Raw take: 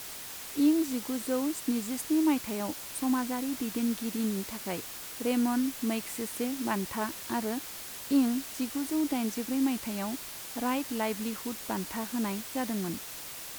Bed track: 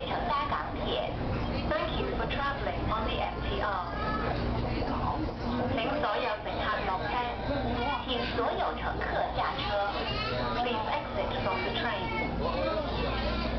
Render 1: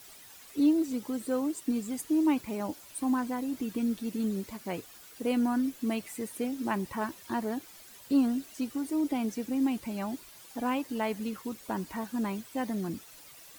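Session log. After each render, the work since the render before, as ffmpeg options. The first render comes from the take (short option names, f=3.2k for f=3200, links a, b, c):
-af "afftdn=nr=12:nf=-42"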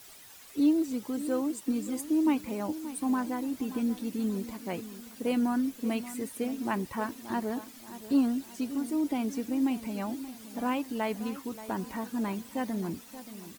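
-filter_complex "[0:a]asplit=2[a][b];[b]adelay=579,lowpass=f=2k:p=1,volume=-13.5dB,asplit=2[c][d];[d]adelay=579,lowpass=f=2k:p=1,volume=0.45,asplit=2[e][f];[f]adelay=579,lowpass=f=2k:p=1,volume=0.45,asplit=2[g][h];[h]adelay=579,lowpass=f=2k:p=1,volume=0.45[i];[a][c][e][g][i]amix=inputs=5:normalize=0"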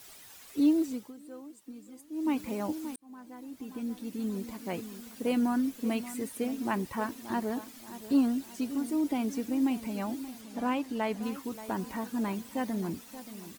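-filter_complex "[0:a]asettb=1/sr,asplit=3[a][b][c];[a]atrim=end=10.414[d];[b]atrim=start=10.41:end=11.23,asetpts=PTS-STARTPTS,afade=t=in:d=0.004:c=qsin,afade=t=out:st=0.816:d=0.004:c=qsin,highshelf=f=10k:g=-9.5[e];[c]atrim=start=11.226[f];[d][e]acrossfade=d=0.004:c1=hsin:c2=qsin[g];[g][f]acrossfade=d=0.004:c1=qsin:c2=hsin,asplit=4[h][i][j][k];[h]atrim=end=1.14,asetpts=PTS-STARTPTS,afade=t=out:st=0.84:d=0.3:silence=0.158489[l];[i]atrim=start=1.14:end=2.11,asetpts=PTS-STARTPTS,volume=-16dB[m];[j]atrim=start=2.11:end=2.96,asetpts=PTS-STARTPTS,afade=t=in:d=0.3:silence=0.158489,afade=t=out:st=0.846:d=0.004:c=hsin[n];[k]atrim=start=2.96,asetpts=PTS-STARTPTS,afade=t=in:d=1.82[o];[l][m][n][o]concat=n=4:v=0:a=1"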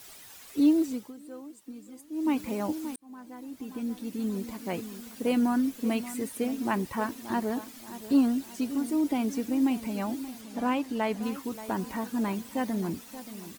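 -af "volume=2.5dB"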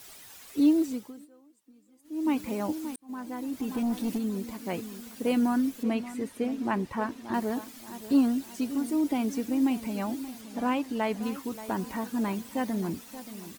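-filter_complex "[0:a]asplit=3[a][b][c];[a]afade=t=out:st=3.08:d=0.02[d];[b]aeval=exprs='0.0596*sin(PI/2*1.58*val(0)/0.0596)':c=same,afade=t=in:st=3.08:d=0.02,afade=t=out:st=4.17:d=0.02[e];[c]afade=t=in:st=4.17:d=0.02[f];[d][e][f]amix=inputs=3:normalize=0,asettb=1/sr,asplit=3[g][h][i];[g]atrim=end=5.834[j];[h]atrim=start=5.83:end=7.34,asetpts=PTS-STARTPTS,afade=t=in:d=0.004:c=qsin,afade=t=out:st=1.506:d=0.004:c=qsin,aemphasis=mode=reproduction:type=50kf[k];[i]atrim=start=7.336[l];[j][k]acrossfade=d=0.004:c1=hsin:c2=qsin[m];[m][l]acrossfade=d=0.004:c1=qsin:c2=hsin,asplit=3[n][o][p];[n]atrim=end=1.39,asetpts=PTS-STARTPTS,afade=t=out:st=1.24:d=0.15:c=exp:silence=0.188365[q];[o]atrim=start=1.39:end=1.91,asetpts=PTS-STARTPTS,volume=-14.5dB[r];[p]atrim=start=1.91,asetpts=PTS-STARTPTS,afade=t=in:d=0.15:c=exp:silence=0.188365[s];[q][r][s]concat=n=3:v=0:a=1"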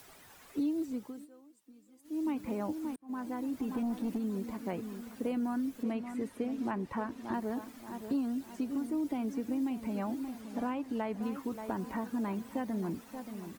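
-filter_complex "[0:a]acrossover=split=160|2000[a][b][c];[a]acompressor=threshold=-47dB:ratio=4[d];[b]acompressor=threshold=-33dB:ratio=4[e];[c]acompressor=threshold=-59dB:ratio=4[f];[d][e][f]amix=inputs=3:normalize=0"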